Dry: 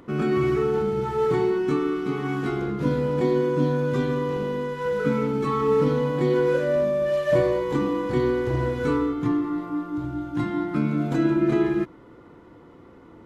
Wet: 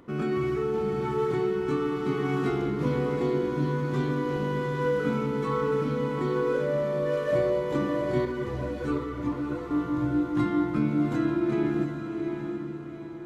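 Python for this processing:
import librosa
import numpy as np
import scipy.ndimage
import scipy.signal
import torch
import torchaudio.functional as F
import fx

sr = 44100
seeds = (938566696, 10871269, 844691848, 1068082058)

y = fx.rider(x, sr, range_db=4, speed_s=0.5)
y = fx.echo_diffused(y, sr, ms=728, feedback_pct=45, wet_db=-5.5)
y = fx.ensemble(y, sr, at=(8.25, 9.71))
y = y * 10.0 ** (-4.5 / 20.0)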